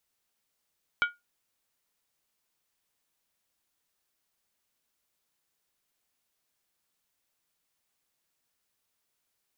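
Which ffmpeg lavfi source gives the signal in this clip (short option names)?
-f lavfi -i "aevalsrc='0.119*pow(10,-3*t/0.19)*sin(2*PI*1430*t)+0.0596*pow(10,-3*t/0.15)*sin(2*PI*2279.4*t)+0.0299*pow(10,-3*t/0.13)*sin(2*PI*3054.5*t)+0.015*pow(10,-3*t/0.125)*sin(2*PI*3283.3*t)+0.0075*pow(10,-3*t/0.117)*sin(2*PI*3793.8*t)':d=0.63:s=44100"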